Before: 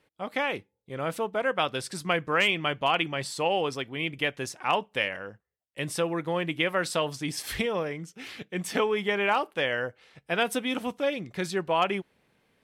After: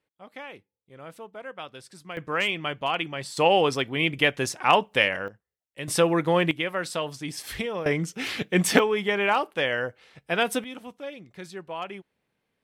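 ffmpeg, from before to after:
-af "asetnsamples=n=441:p=0,asendcmd='2.17 volume volume -2dB;3.37 volume volume 6.5dB;5.28 volume volume -3dB;5.88 volume volume 7dB;6.51 volume volume -2dB;7.86 volume volume 10.5dB;8.79 volume volume 2dB;10.64 volume volume -9.5dB',volume=-12dB"

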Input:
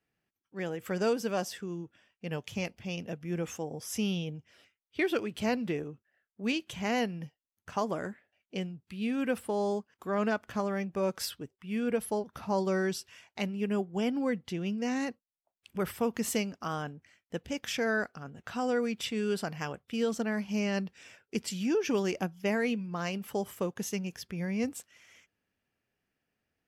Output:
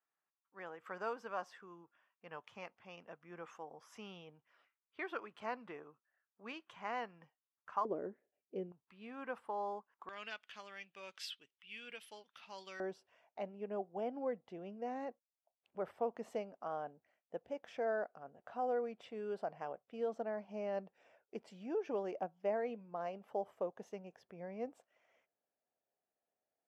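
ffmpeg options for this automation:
-af "asetnsamples=n=441:p=0,asendcmd='7.85 bandpass f 410;8.72 bandpass f 1000;10.09 bandpass f 3000;12.8 bandpass f 660',bandpass=f=1.1k:t=q:w=2.7:csg=0"

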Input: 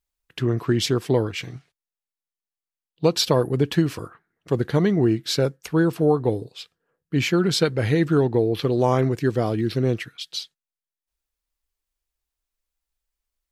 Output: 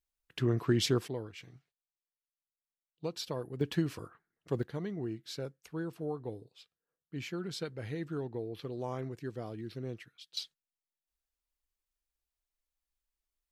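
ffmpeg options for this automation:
-af "asetnsamples=n=441:p=0,asendcmd='1.08 volume volume -18.5dB;3.61 volume volume -11dB;4.63 volume volume -18.5dB;10.37 volume volume -7dB',volume=-7dB"

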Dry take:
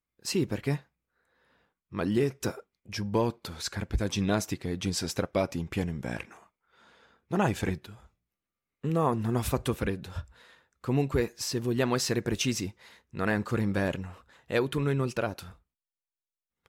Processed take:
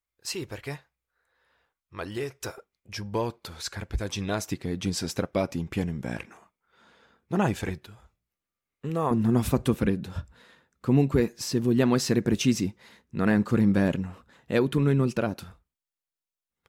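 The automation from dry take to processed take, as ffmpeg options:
-af "asetnsamples=n=441:p=0,asendcmd='2.58 equalizer g -5;4.51 equalizer g 3;7.56 equalizer g -3;9.11 equalizer g 9;15.44 equalizer g -0.5',equalizer=f=210:t=o:w=1.5:g=-13.5"

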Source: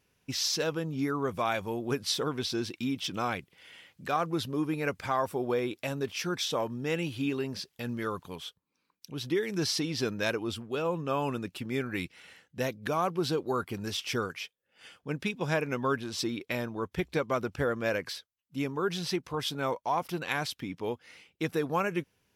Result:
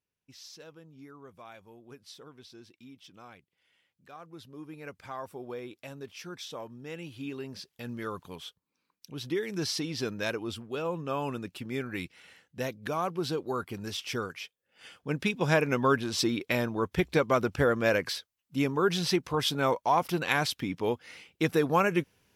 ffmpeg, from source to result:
-af "volume=4.5dB,afade=t=in:st=4.14:d=1.1:silence=0.354813,afade=t=in:st=6.95:d=1.33:silence=0.398107,afade=t=in:st=14.42:d=1.1:silence=0.473151"

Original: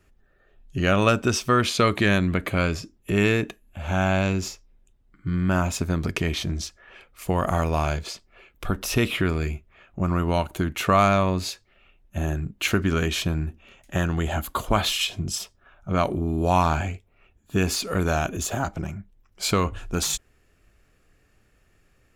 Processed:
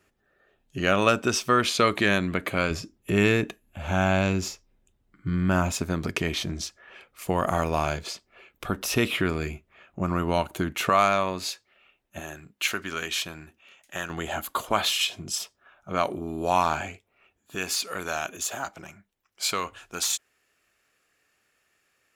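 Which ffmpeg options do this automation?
-af "asetnsamples=n=441:p=0,asendcmd='2.71 highpass f 81;5.72 highpass f 180;10.89 highpass f 560;12.2 highpass f 1300;14.1 highpass f 490;17.55 highpass f 1200',highpass=f=270:p=1"

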